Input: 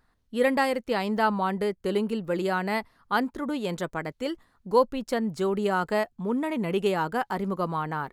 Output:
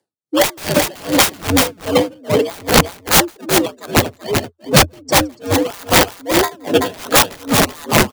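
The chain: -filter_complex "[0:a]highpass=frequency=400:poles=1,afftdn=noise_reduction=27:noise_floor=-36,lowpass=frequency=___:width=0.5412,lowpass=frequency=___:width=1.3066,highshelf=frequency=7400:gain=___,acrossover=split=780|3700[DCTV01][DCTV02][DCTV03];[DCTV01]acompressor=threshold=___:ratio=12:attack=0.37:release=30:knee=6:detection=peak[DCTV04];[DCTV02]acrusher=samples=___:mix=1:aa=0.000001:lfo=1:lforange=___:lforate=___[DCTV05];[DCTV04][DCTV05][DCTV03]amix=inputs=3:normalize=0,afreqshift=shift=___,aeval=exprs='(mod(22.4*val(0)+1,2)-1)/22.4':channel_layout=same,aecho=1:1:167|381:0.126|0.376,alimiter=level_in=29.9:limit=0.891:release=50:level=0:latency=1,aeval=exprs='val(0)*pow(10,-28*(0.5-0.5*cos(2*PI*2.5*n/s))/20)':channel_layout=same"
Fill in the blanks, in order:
10000, 10000, 9.5, 0.00891, 31, 31, 1.5, 84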